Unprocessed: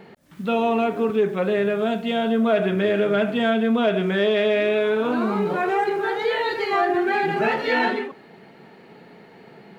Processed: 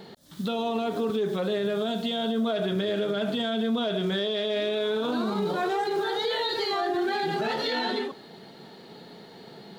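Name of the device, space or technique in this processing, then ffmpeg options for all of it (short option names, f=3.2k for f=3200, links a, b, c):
over-bright horn tweeter: -af "highshelf=f=3k:t=q:w=3:g=6.5,alimiter=limit=-19.5dB:level=0:latency=1:release=73"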